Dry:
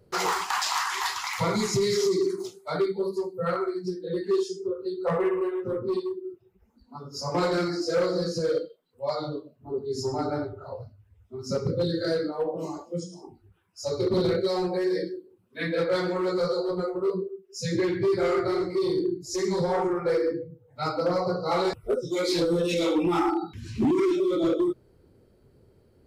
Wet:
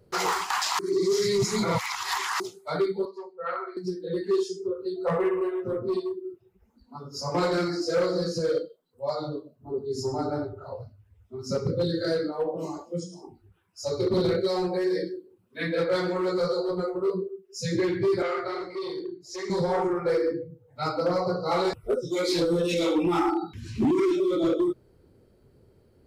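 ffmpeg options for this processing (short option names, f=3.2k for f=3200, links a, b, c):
-filter_complex "[0:a]asettb=1/sr,asplit=3[a][b][c];[a]atrim=end=3.054[d];[b]atrim=start=3.05:end=3.77,asetpts=PTS-STARTPTS,afade=t=in:d=0.004:c=qsin,afade=t=out:st=0.716:d=0.004:c=qsin,highpass=700,lowpass=2.6k[e];[c]atrim=start=3.766[f];[d][e]acrossfade=d=0.004:c1=hsin:c2=qsin[g];[g][f]acrossfade=d=0.004:c1=qsin:c2=hsin,asettb=1/sr,asplit=3[h][i][j];[h]atrim=end=4.964[k];[i]atrim=start=4.96:end=6.12,asetpts=PTS-STARTPTS,afade=t=in:d=0.004:c=qsin,afade=t=out:st=1.156:d=0.004:c=qsin,aeval=exprs='val(0)+0.00178*sin(2*PI*680*n/s)':c=same[l];[j]atrim=start=6.116[m];[k][l]acrossfade=d=0.004:c1=hsin:c2=qsin[n];[n][m]acrossfade=d=0.004:c1=qsin:c2=hsin,asettb=1/sr,asplit=3[o][p][q];[o]atrim=end=8.624[r];[p]atrim=start=8.62:end=10.58,asetpts=PTS-STARTPTS,afade=t=in:d=0.004:c=qsin,afade=t=out:st=1.956:d=0.004:c=qsin,equalizer=f=2.4k:w=1.2:g=-7.5[s];[q]atrim=start=10.576[t];[r][s]acrossfade=d=0.004:c1=hsin:c2=qsin[u];[u][t]acrossfade=d=0.004:c1=qsin:c2=hsin,asettb=1/sr,asplit=3[v][w][x];[v]atrim=end=18.224[y];[w]atrim=start=18.22:end=19.5,asetpts=PTS-STARTPTS,afade=t=in:d=0.004:c=qsin,afade=t=out:st=1.276:d=0.004:c=qsin,acrossover=split=480 4900:gain=0.178 1 0.224[z][aa][ab];[z][aa][ab]amix=inputs=3:normalize=0[ac];[x]atrim=start=19.496[ad];[y][ac]acrossfade=d=0.004:c1=hsin:c2=qsin[ae];[ae][ad]acrossfade=d=0.004:c1=qsin:c2=hsin,asplit=3[af][ag][ah];[af]atrim=end=0.792[ai];[ag]atrim=start=0.788:end=2.402,asetpts=PTS-STARTPTS,areverse[aj];[ah]atrim=start=2.398[ak];[ai][aj]acrossfade=d=0.004:c1=hsin:c2=hsin[al];[al][ak]acrossfade=d=0.004:c1=hsin:c2=hsin"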